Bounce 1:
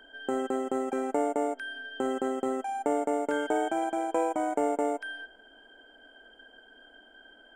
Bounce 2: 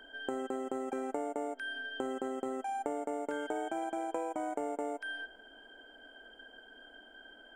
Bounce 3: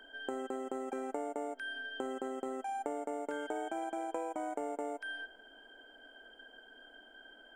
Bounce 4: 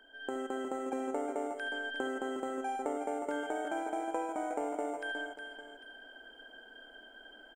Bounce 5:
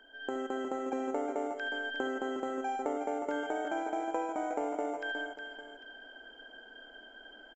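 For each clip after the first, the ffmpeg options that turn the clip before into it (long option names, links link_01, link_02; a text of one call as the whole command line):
ffmpeg -i in.wav -af "acompressor=threshold=-34dB:ratio=4" out.wav
ffmpeg -i in.wav -af "equalizer=frequency=84:width=0.89:gain=-9.5,volume=-1.5dB" out.wav
ffmpeg -i in.wav -af "aecho=1:1:72|362|799:0.224|0.398|0.15,dynaudnorm=framelen=170:gausssize=3:maxgain=7dB,volume=-5dB" out.wav
ffmpeg -i in.wav -af "aresample=16000,aresample=44100,volume=1.5dB" out.wav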